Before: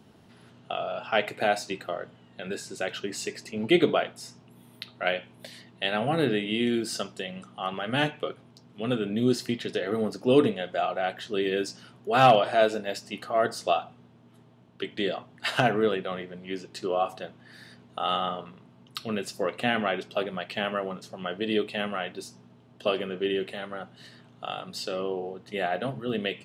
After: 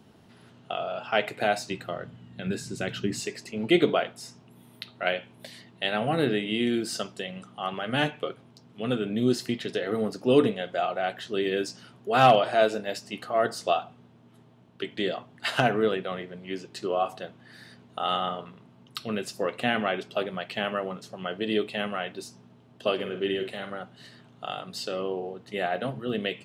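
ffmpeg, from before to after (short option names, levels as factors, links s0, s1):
-filter_complex "[0:a]asettb=1/sr,asplit=3[s0][s1][s2];[s0]atrim=end=1.334[s3];[s1]atrim=start=1.33:end=3.2,asetpts=PTS-STARTPTS,afade=t=in:d=0.004:c=qsin,afade=t=out:st=1.866:d=0.004:c=qsin,asubboost=boost=10.5:cutoff=240[s4];[s2]atrim=start=3.196[s5];[s3][s4]acrossfade=d=0.004:c1=hsin:c2=qsin[s6];[s6][s5]acrossfade=d=0.004:c1=qsin:c2=hsin,asettb=1/sr,asplit=3[s7][s8][s9];[s7]atrim=end=22.944[s10];[s8]atrim=start=22.94:end=23.75,asetpts=PTS-STARTPTS,afade=t=in:d=0.004:c=qsin,afade=t=out:st=0.806:d=0.004:c=qsin,asplit=2[s11][s12];[s12]adelay=50,volume=0.376[s13];[s11][s13]amix=inputs=2:normalize=0,atrim=end_sample=35721[s14];[s9]atrim=start=23.746[s15];[s10][s14]acrossfade=d=0.004:c1=hsin:c2=qsin[s16];[s16][s15]acrossfade=d=0.004:c1=qsin:c2=hsin"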